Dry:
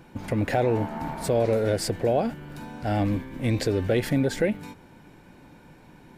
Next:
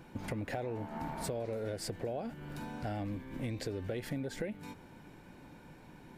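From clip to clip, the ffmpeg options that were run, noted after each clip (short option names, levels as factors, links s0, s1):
-af "acompressor=threshold=0.0251:ratio=5,volume=0.668"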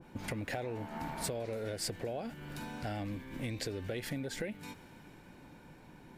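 -af "adynamicequalizer=threshold=0.00158:dfrequency=1500:dqfactor=0.7:tfrequency=1500:tqfactor=0.7:attack=5:release=100:ratio=0.375:range=3:mode=boostabove:tftype=highshelf,volume=0.891"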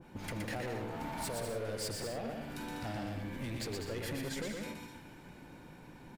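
-af "asoftclip=type=hard:threshold=0.015,aecho=1:1:120|198|248.7|281.7|303.1:0.631|0.398|0.251|0.158|0.1"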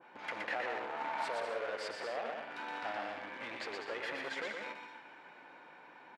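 -filter_complex "[0:a]asplit=2[s0][s1];[s1]acrusher=bits=5:mix=0:aa=0.000001,volume=0.251[s2];[s0][s2]amix=inputs=2:normalize=0,highpass=750,lowpass=2400,volume=1.88"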